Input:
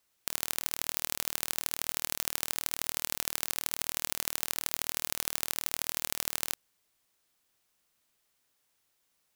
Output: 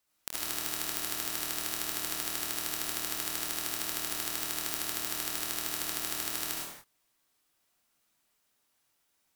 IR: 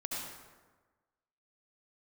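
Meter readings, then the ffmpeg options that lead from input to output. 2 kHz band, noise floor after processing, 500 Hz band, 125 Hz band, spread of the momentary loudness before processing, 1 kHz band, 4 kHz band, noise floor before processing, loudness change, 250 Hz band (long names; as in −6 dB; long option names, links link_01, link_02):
+0.5 dB, −75 dBFS, +1.5 dB, 0.0 dB, 1 LU, +1.5 dB, +0.5 dB, −76 dBFS, 0.0 dB, +5.0 dB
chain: -filter_complex "[1:a]atrim=start_sample=2205,afade=type=out:start_time=0.38:duration=0.01,atrim=end_sample=17199,asetrate=48510,aresample=44100[link_01];[0:a][link_01]afir=irnorm=-1:irlink=0"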